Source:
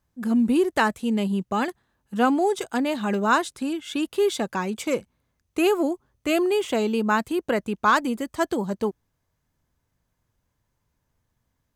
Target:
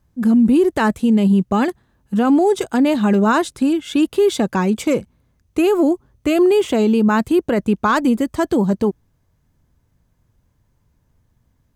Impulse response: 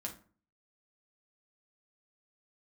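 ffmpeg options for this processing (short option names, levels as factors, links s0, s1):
-af "lowshelf=f=420:g=9.5,alimiter=limit=0.237:level=0:latency=1:release=29,volume=1.68"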